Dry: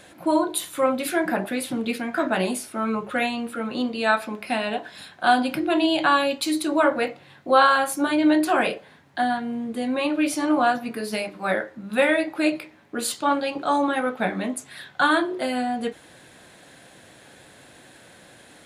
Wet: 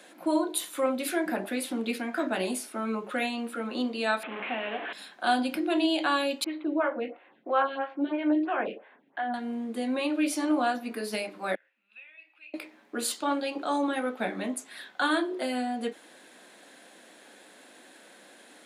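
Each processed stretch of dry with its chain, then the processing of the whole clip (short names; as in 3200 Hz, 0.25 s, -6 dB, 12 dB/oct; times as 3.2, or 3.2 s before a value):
4.23–4.93 delta modulation 16 kbps, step -24 dBFS + low shelf 280 Hz -8 dB
6.44–9.34 steep low-pass 3100 Hz + photocell phaser 3 Hz
11.55–12.54 compressor 10:1, threshold -28 dBFS + band-pass 2600 Hz, Q 11
whole clip: steep high-pass 210 Hz 36 dB/oct; dynamic EQ 1100 Hz, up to -5 dB, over -31 dBFS, Q 0.75; gain -3.5 dB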